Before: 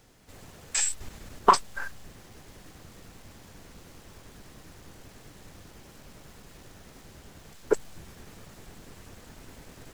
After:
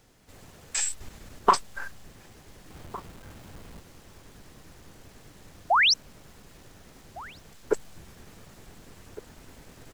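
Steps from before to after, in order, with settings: 2.70–3.80 s: square wave that keeps the level; 5.70–5.94 s: painted sound rise 620–6200 Hz -18 dBFS; echo from a far wall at 250 m, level -17 dB; trim -1.5 dB

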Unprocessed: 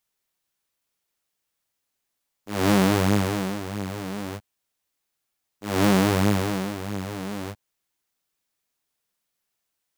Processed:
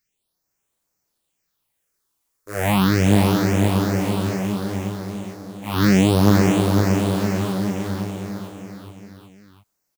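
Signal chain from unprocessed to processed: phase shifter stages 6, 0.34 Hz, lowest notch 160–4200 Hz; bouncing-ball echo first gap 510 ms, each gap 0.9×, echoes 5; trim +5 dB

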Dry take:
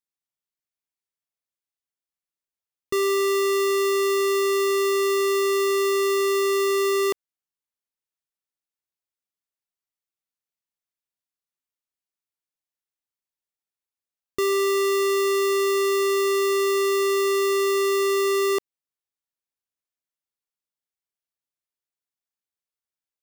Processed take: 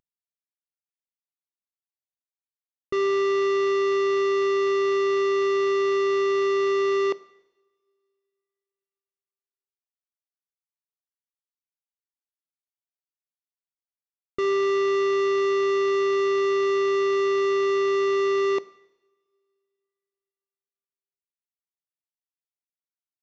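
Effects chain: CVSD coder 64 kbps; in parallel at -7.5 dB: wavefolder -30.5 dBFS; on the sum: two-slope reverb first 0.93 s, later 3 s, from -25 dB, DRR 17 dB; resampled via 16 kHz

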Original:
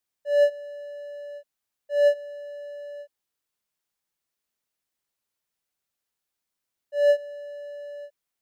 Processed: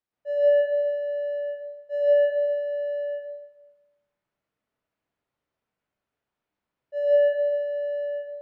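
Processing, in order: low-pass 1.3 kHz 6 dB/octave; peak limiter -22.5 dBFS, peak gain reduction 10 dB; reverberation RT60 1.1 s, pre-delay 102 ms, DRR -8 dB

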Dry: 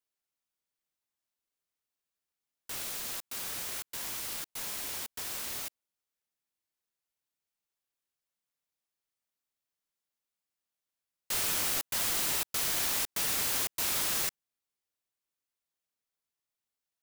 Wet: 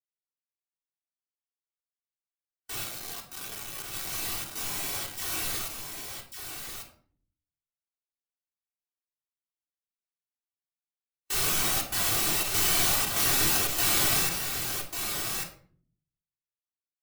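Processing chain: 2.84–4.13 s: cycle switcher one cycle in 2, muted; in parallel at -2 dB: peak limiter -28 dBFS, peak gain reduction 10 dB; 5.16–5.61 s: on the sum: phase dispersion lows, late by 70 ms, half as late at 1.2 kHz; on a send: delay 1144 ms -3.5 dB; on the sum: simulated room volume 1900 m³, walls furnished, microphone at 3.5 m; spectral contrast expander 1.5:1

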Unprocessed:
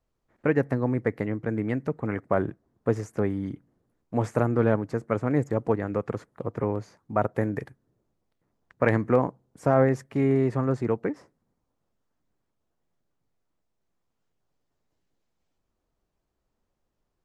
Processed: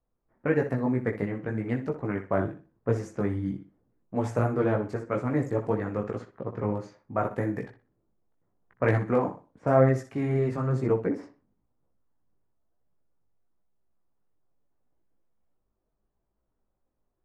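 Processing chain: flutter echo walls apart 10.6 m, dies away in 0.34 s; chorus voices 4, 1 Hz, delay 18 ms, depth 3 ms; level-controlled noise filter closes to 1.4 kHz, open at -26.5 dBFS; trim +1 dB

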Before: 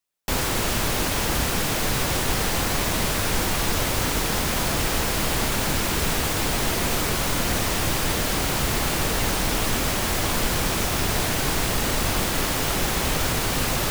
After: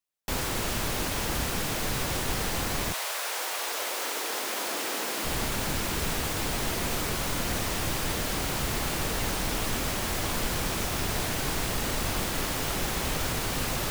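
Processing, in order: 2.92–5.24 s: high-pass 610 Hz -> 240 Hz 24 dB/octave; trim -6 dB

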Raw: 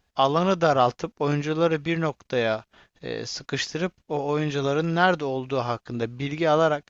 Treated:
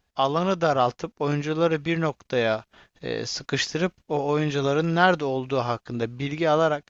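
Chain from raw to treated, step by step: gain riding 2 s

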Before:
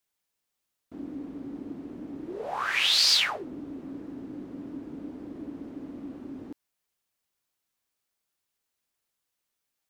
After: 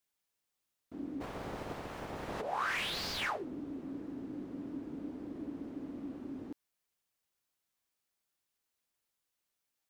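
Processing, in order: 1.20–2.40 s: spectral peaks clipped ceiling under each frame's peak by 28 dB; slew-rate limiter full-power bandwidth 68 Hz; trim -3 dB

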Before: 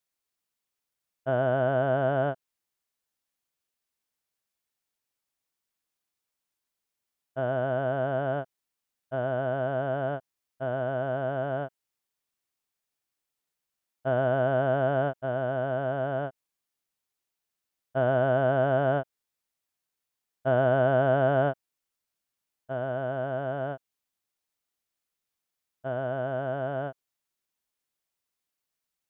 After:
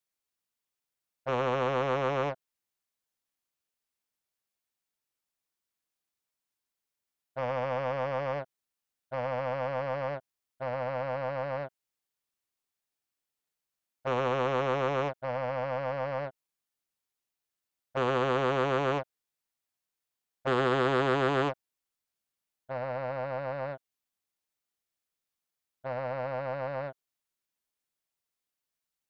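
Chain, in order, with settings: loudspeaker Doppler distortion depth 0.95 ms; trim -3 dB

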